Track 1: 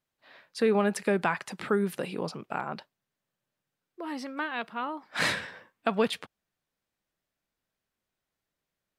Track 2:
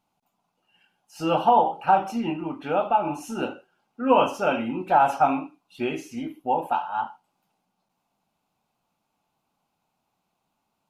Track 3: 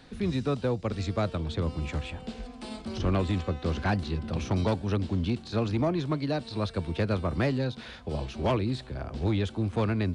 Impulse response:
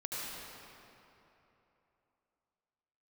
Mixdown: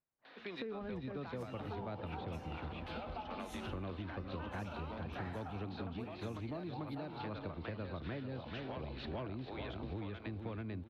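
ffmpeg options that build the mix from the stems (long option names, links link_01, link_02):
-filter_complex "[0:a]lowpass=1600,alimiter=limit=-19.5dB:level=0:latency=1:release=472,volume=-8dB,asplit=2[link_01][link_02];[1:a]agate=range=-33dB:threshold=-48dB:ratio=3:detection=peak,highshelf=frequency=6600:gain=4.5,adelay=250,volume=-11dB,asplit=2[link_03][link_04];[link_04]volume=-18dB[link_05];[2:a]lowpass=frequency=3700:width=0.5412,lowpass=frequency=3700:width=1.3066,equalizer=frequency=290:width=4.6:gain=2.5,adelay=250,volume=-0.5dB,asplit=2[link_06][link_07];[link_07]volume=-5.5dB[link_08];[link_02]apad=whole_len=458571[link_09];[link_06][link_09]sidechaincompress=threshold=-40dB:ratio=8:attack=12:release=155[link_10];[link_03][link_10]amix=inputs=2:normalize=0,highpass=620,acompressor=threshold=-39dB:ratio=6,volume=0dB[link_11];[3:a]atrim=start_sample=2205[link_12];[link_05][link_12]afir=irnorm=-1:irlink=0[link_13];[link_08]aecho=0:1:441|882|1323|1764|2205:1|0.32|0.102|0.0328|0.0105[link_14];[link_01][link_11][link_13][link_14]amix=inputs=4:normalize=0,acompressor=threshold=-40dB:ratio=6"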